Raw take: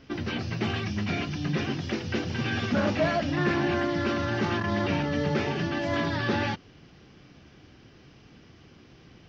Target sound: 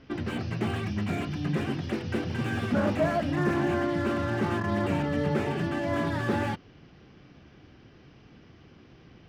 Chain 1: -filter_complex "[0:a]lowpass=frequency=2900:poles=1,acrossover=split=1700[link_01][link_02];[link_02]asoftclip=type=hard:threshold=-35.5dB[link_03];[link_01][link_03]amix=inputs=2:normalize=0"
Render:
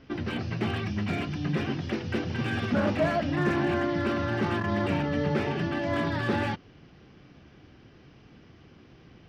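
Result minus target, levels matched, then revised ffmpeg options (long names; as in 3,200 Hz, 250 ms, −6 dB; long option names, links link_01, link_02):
hard clipping: distortion −10 dB
-filter_complex "[0:a]lowpass=frequency=2900:poles=1,acrossover=split=1700[link_01][link_02];[link_02]asoftclip=type=hard:threshold=-42.5dB[link_03];[link_01][link_03]amix=inputs=2:normalize=0"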